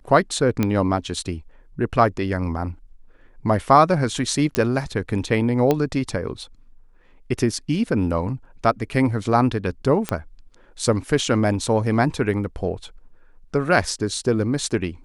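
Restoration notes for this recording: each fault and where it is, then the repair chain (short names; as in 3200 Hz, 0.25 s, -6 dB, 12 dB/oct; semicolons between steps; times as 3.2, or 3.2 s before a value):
0.63 pop -8 dBFS
4.55 pop -5 dBFS
5.71 pop -7 dBFS
10.09 pop -8 dBFS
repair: de-click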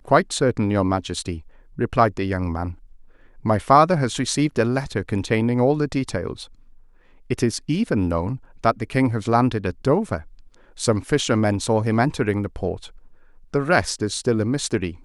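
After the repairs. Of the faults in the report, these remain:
none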